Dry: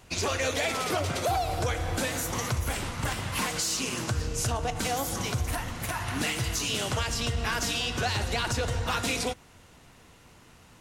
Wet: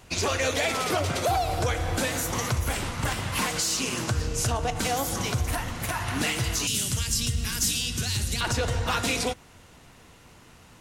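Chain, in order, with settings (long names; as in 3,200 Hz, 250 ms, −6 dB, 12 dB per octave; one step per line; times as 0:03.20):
0:06.67–0:08.41: drawn EQ curve 210 Hz 0 dB, 700 Hz −18 dB, 9,700 Hz +9 dB
level +2.5 dB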